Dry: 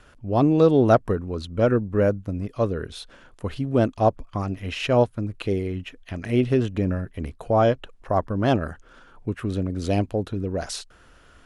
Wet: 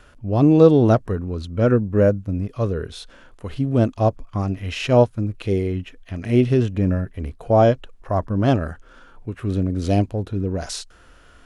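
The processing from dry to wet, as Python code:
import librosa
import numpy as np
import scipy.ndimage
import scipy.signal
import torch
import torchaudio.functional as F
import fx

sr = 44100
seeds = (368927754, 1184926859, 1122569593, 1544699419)

y = fx.hpss(x, sr, part='harmonic', gain_db=9)
y = fx.dynamic_eq(y, sr, hz=6300.0, q=0.91, threshold_db=-43.0, ratio=4.0, max_db=4)
y = F.gain(torch.from_numpy(y), -3.5).numpy()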